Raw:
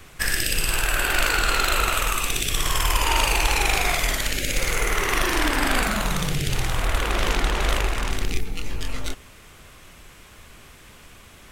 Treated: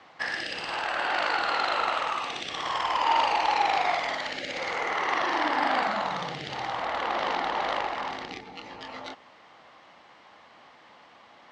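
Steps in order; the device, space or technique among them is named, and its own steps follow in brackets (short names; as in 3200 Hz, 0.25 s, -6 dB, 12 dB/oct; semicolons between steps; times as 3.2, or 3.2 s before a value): phone earpiece (speaker cabinet 370–4000 Hz, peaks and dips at 400 Hz -9 dB, 820 Hz +7 dB, 1500 Hz -6 dB, 2500 Hz -10 dB, 3500 Hz -6 dB)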